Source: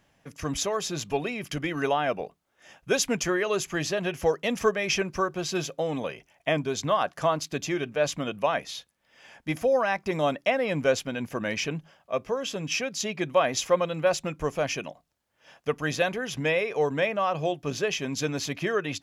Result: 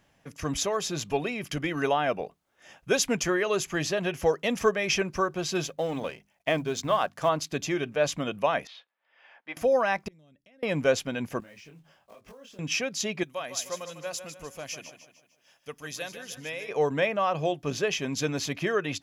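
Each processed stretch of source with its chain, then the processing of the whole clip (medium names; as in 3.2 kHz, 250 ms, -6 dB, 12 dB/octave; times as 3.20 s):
5.67–7.29 s: companding laws mixed up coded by A + hum notches 50/100/150/200/250 Hz
8.67–9.57 s: high-pass 720 Hz + distance through air 360 m
10.08–10.63 s: amplifier tone stack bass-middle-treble 10-0-1 + compression, threshold -55 dBFS
11.40–12.59 s: block-companded coder 5-bit + compression 20:1, threshold -42 dBFS + detune thickener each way 43 cents
13.23–16.69 s: pre-emphasis filter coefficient 0.8 + feedback delay 151 ms, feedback 44%, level -10 dB
whole clip: none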